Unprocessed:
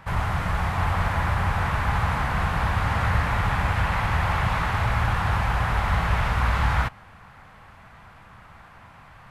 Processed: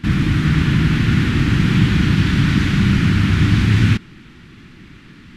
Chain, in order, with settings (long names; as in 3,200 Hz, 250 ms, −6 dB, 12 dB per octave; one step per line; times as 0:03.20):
low shelf with overshoot 240 Hz +8 dB, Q 1.5
downsampling to 16,000 Hz
wrong playback speed 45 rpm record played at 78 rpm
level +1 dB